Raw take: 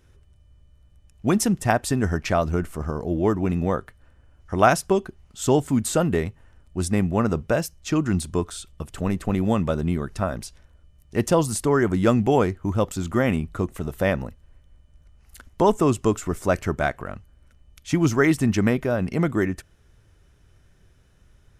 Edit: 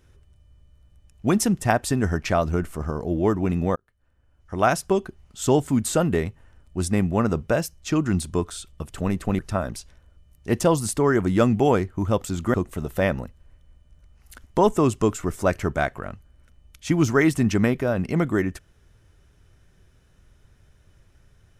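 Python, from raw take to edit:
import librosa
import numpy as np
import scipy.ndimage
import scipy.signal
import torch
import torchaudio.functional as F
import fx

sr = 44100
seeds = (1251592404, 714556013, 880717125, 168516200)

y = fx.edit(x, sr, fx.fade_in_span(start_s=3.76, length_s=1.29),
    fx.cut(start_s=9.39, length_s=0.67),
    fx.cut(start_s=13.21, length_s=0.36), tone=tone)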